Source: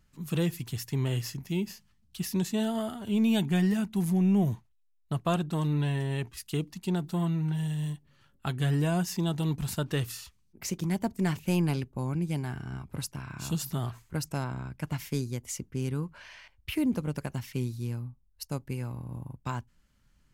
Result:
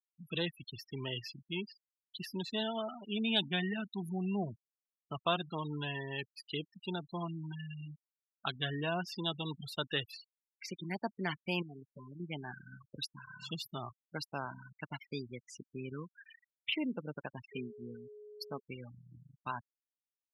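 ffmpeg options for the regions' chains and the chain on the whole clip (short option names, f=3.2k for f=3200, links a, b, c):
-filter_complex "[0:a]asettb=1/sr,asplit=3[a][b][c];[a]atrim=end=11.624[d];[b]atrim=start=11.62:end=12.2,asetpts=PTS-STARTPTS,afade=t=in:d=0.004:c=qsin,afade=t=out:st=0.576:d=0.004:c=qsin,bandreject=f=920:w=5.5,aecho=1:1:7:0.94,atrim=end_sample=25578,acompressor=threshold=-33dB:ratio=16:attack=3.2:release=140:knee=1:detection=peak[e];[c]atrim=start=12.196[f];[d][e]acrossfade=d=0.004:c1=hsin:c2=qsin[g];[g][f]acrossfade=d=0.004:c1=qsin:c2=hsin,asettb=1/sr,asplit=3[h][i][j];[h]atrim=end=17.524[k];[i]atrim=start=17.52:end=18.6,asetpts=PTS-STARTPTS,afade=t=in:d=0.004:c=qsin,afade=t=out:st=1.076:d=0.004:c=qsin,aecho=1:1:4.6:0.41,atrim=end_sample=47628,aeval=exprs='val(0)+0.00708*sin(2*PI*420*n/s)':c=same[l];[j]atrim=start=18.596[m];[k][l]acrossfade=d=0.004:c1=hsin:c2=qsin[n];[n][m]acrossfade=d=0.004:c1=qsin:c2=hsin,highpass=f=730:p=1,afftfilt=real='re*gte(hypot(re,im),0.0158)':imag='im*gte(hypot(re,im),0.0158)':win_size=1024:overlap=0.75,highshelf=f=5.3k:t=q:w=3:g=-11.5"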